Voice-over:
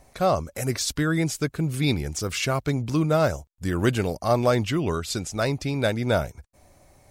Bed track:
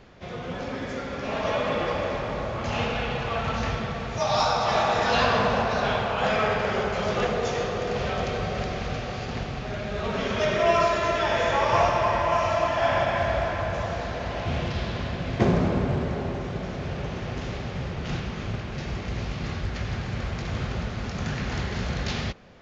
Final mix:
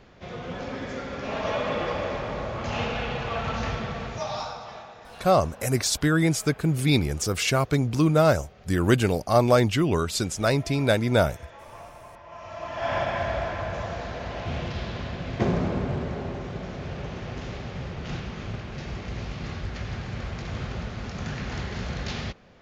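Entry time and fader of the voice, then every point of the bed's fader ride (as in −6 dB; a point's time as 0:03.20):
5.05 s, +2.0 dB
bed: 0:04.06 −1.5 dB
0:04.97 −23.5 dB
0:12.22 −23.5 dB
0:12.94 −3 dB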